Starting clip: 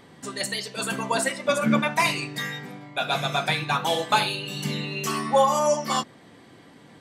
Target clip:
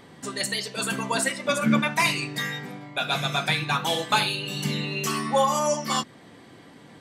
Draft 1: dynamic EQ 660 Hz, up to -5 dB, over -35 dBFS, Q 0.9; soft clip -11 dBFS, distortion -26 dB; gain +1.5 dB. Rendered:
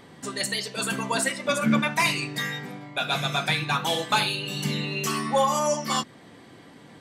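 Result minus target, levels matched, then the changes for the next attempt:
soft clip: distortion +19 dB
change: soft clip -0.5 dBFS, distortion -46 dB

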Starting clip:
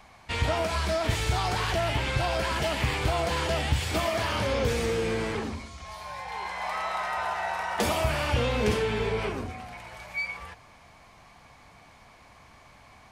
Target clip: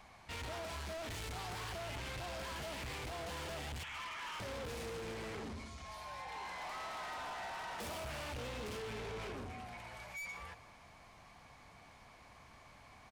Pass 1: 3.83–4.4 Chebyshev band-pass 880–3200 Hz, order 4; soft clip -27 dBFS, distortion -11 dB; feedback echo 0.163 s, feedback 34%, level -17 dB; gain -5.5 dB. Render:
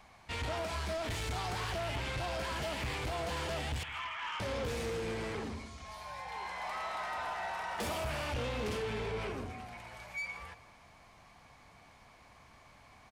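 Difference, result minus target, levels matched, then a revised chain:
soft clip: distortion -6 dB
3.83–4.4 Chebyshev band-pass 880–3200 Hz, order 4; soft clip -36.5 dBFS, distortion -5 dB; feedback echo 0.163 s, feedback 34%, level -17 dB; gain -5.5 dB

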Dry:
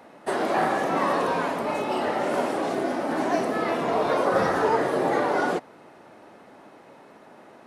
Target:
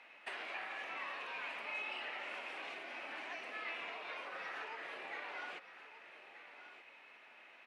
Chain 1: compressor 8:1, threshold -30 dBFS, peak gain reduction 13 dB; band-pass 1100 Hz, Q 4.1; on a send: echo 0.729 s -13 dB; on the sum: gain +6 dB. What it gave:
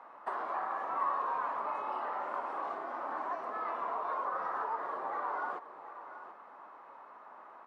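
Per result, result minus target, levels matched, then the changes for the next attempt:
2000 Hz band -10.0 dB; echo 0.5 s early
change: band-pass 2500 Hz, Q 4.1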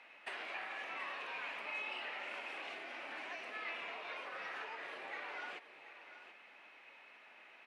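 echo 0.5 s early
change: echo 1.229 s -13 dB

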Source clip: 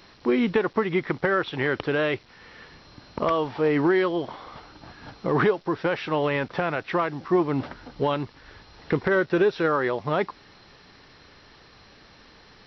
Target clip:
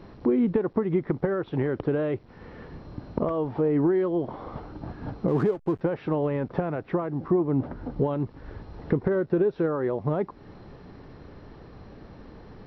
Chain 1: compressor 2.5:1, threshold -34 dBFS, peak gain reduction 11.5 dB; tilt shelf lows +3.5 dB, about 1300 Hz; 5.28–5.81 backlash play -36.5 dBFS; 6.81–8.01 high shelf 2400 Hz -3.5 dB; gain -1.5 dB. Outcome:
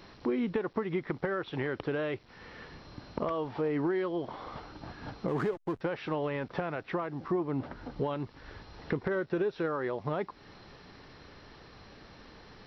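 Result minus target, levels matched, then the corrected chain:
1000 Hz band +5.0 dB
compressor 2.5:1, threshold -34 dBFS, peak gain reduction 11.5 dB; tilt shelf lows +13 dB, about 1300 Hz; 5.28–5.81 backlash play -36.5 dBFS; 6.81–8.01 high shelf 2400 Hz -3.5 dB; gain -1.5 dB

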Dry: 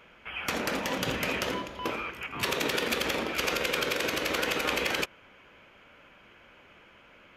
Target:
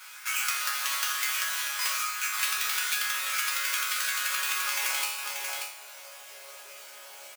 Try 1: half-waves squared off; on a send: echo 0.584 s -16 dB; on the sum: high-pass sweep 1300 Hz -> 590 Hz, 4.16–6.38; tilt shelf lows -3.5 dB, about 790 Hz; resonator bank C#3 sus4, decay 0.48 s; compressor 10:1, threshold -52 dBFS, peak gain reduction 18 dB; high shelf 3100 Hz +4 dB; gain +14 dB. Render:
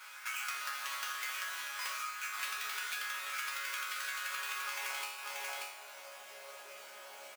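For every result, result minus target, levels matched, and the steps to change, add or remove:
compressor: peak gain reduction +5.5 dB; 8000 Hz band -3.0 dB
change: compressor 10:1, threshold -46 dBFS, peak gain reduction 12.5 dB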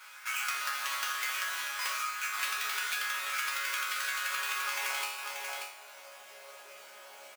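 8000 Hz band -3.0 dB
change: high shelf 3100 Hz +13.5 dB

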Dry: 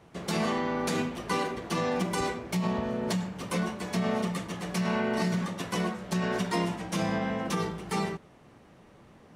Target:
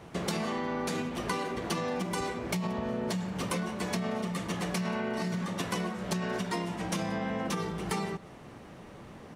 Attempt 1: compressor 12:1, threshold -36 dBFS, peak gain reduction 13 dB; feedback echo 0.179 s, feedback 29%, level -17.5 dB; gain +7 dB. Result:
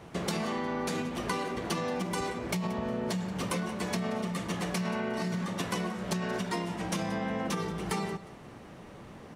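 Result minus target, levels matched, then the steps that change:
echo-to-direct +7 dB
change: feedback echo 0.179 s, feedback 29%, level -24.5 dB

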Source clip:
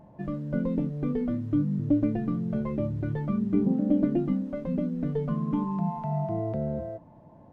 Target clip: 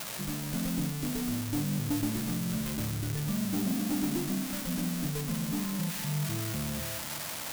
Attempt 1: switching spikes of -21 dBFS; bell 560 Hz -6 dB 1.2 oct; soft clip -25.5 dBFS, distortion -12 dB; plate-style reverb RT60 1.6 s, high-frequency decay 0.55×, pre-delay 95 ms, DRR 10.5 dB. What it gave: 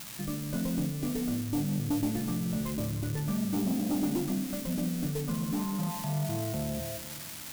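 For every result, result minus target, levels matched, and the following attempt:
switching spikes: distortion -10 dB; 500 Hz band +3.5 dB
switching spikes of -11 dBFS; bell 560 Hz -6 dB 1.2 oct; soft clip -25.5 dBFS, distortion -5 dB; plate-style reverb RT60 1.6 s, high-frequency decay 0.55×, pre-delay 95 ms, DRR 10.5 dB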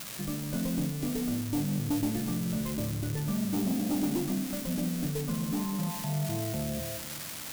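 500 Hz band +3.5 dB
switching spikes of -11 dBFS; bell 560 Hz -17 dB 1.2 oct; soft clip -25.5 dBFS, distortion -4 dB; plate-style reverb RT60 1.6 s, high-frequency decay 0.55×, pre-delay 95 ms, DRR 10.5 dB

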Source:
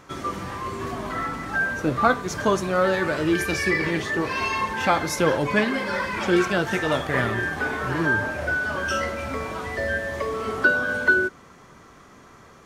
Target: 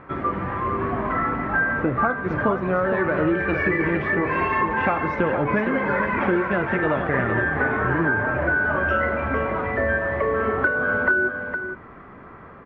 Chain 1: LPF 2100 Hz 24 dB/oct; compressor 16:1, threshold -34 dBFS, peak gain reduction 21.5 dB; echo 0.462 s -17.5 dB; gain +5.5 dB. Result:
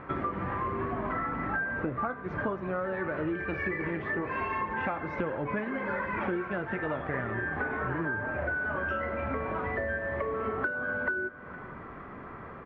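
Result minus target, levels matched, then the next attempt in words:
compressor: peak gain reduction +10.5 dB; echo-to-direct -10 dB
LPF 2100 Hz 24 dB/oct; compressor 16:1, threshold -23 dBFS, peak gain reduction 11.5 dB; echo 0.462 s -7.5 dB; gain +5.5 dB

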